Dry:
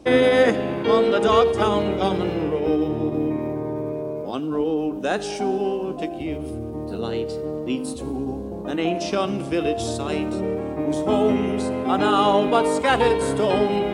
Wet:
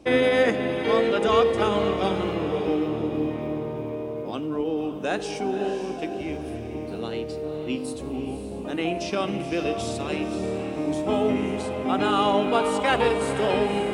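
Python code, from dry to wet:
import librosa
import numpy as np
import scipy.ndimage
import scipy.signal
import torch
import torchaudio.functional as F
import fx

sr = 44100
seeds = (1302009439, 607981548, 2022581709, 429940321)

p1 = fx.peak_eq(x, sr, hz=2400.0, db=4.5, octaves=0.59)
p2 = p1 + fx.echo_diffused(p1, sr, ms=535, feedback_pct=45, wet_db=-9.0, dry=0)
y = F.gain(torch.from_numpy(p2), -4.0).numpy()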